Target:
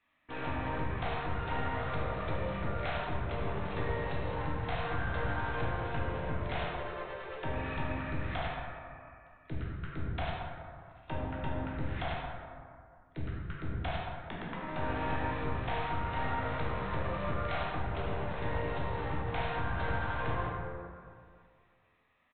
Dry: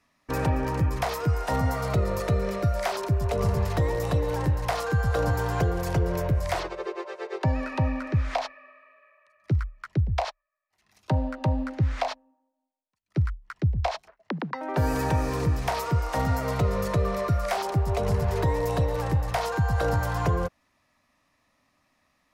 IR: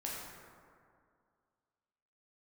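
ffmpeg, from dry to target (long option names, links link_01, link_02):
-filter_complex "[0:a]tiltshelf=frequency=1200:gain=-5.5,aresample=8000,aeval=exprs='clip(val(0),-1,0.0133)':channel_layout=same,aresample=44100[link_01];[1:a]atrim=start_sample=2205[link_02];[link_01][link_02]afir=irnorm=-1:irlink=0,volume=-4dB"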